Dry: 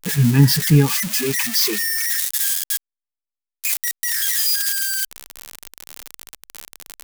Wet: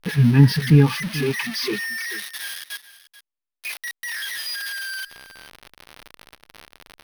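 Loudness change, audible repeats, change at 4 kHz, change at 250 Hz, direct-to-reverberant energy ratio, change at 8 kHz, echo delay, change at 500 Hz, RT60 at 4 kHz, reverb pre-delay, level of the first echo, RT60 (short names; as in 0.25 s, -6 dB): -4.0 dB, 1, -6.0 dB, 0.0 dB, none, -14.5 dB, 0.435 s, 0.0 dB, none, none, -16.0 dB, none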